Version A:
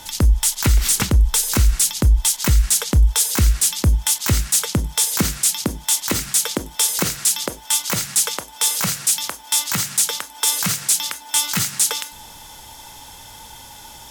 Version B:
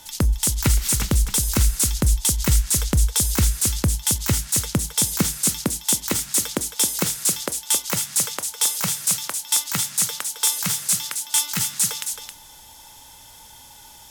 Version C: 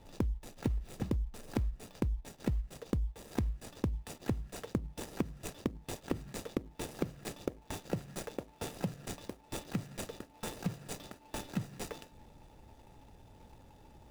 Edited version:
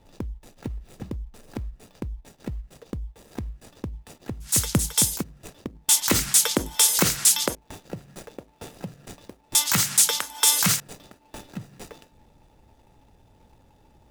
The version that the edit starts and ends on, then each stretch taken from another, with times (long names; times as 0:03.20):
C
0:04.48–0:05.16: punch in from B, crossfade 0.16 s
0:05.89–0:07.55: punch in from A
0:09.55–0:10.80: punch in from A